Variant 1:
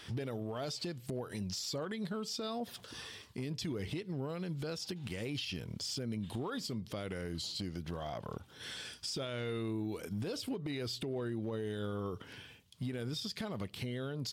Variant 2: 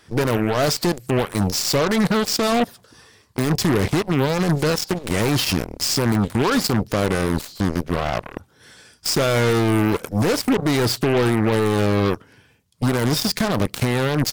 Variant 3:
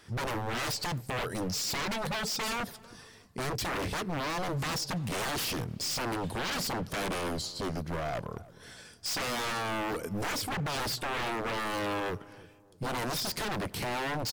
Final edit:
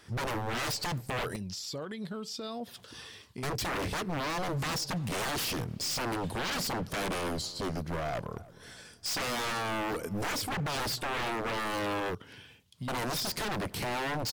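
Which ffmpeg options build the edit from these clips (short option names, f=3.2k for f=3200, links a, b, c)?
-filter_complex "[0:a]asplit=2[a][b];[2:a]asplit=3[c][d][e];[c]atrim=end=1.362[f];[a]atrim=start=1.358:end=3.432[g];[d]atrim=start=3.428:end=12.152[h];[b]atrim=start=12.148:end=12.882[i];[e]atrim=start=12.878[j];[f][g]acrossfade=d=0.004:c1=hsin:c2=hsin[k];[k][h]acrossfade=d=0.004:c1=hsin:c2=hsin[l];[l][i]acrossfade=d=0.004:c1=hsin:c2=hsin[m];[m][j]acrossfade=d=0.004:c1=hsin:c2=hsin"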